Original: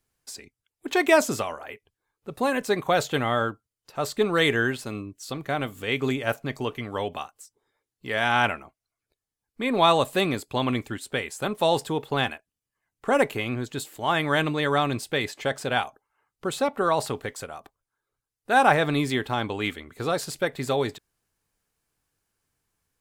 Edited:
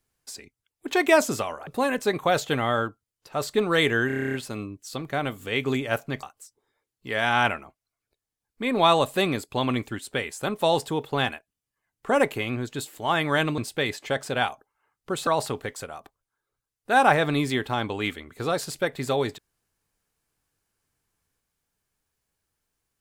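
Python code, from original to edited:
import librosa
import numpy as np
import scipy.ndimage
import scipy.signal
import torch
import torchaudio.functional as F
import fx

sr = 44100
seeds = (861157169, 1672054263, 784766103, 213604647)

y = fx.edit(x, sr, fx.cut(start_s=1.67, length_s=0.63),
    fx.stutter(start_s=4.7, slice_s=0.03, count=10),
    fx.cut(start_s=6.59, length_s=0.63),
    fx.cut(start_s=14.57, length_s=0.36),
    fx.cut(start_s=16.62, length_s=0.25), tone=tone)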